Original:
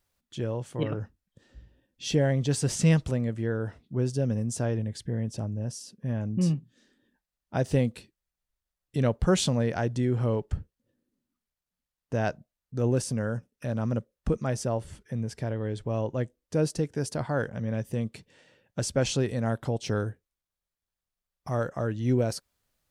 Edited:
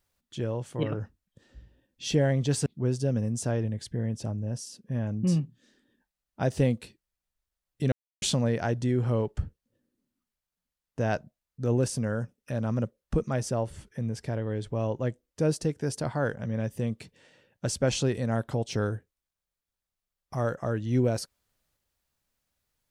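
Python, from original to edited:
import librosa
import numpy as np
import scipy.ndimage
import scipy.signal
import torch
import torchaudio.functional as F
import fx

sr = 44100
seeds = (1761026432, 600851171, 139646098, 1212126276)

y = fx.edit(x, sr, fx.cut(start_s=2.66, length_s=1.14),
    fx.silence(start_s=9.06, length_s=0.3), tone=tone)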